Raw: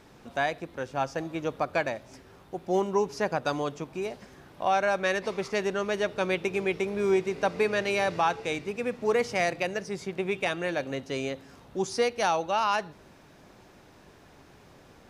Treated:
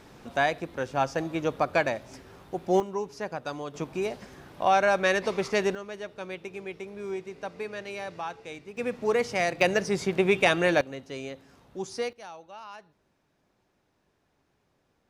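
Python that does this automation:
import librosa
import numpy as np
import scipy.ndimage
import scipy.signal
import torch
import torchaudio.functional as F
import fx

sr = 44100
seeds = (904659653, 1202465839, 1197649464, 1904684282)

y = fx.gain(x, sr, db=fx.steps((0.0, 3.0), (2.8, -6.0), (3.74, 3.0), (5.75, -10.0), (8.77, 0.0), (9.61, 7.0), (10.81, -5.5), (12.13, -18.0)))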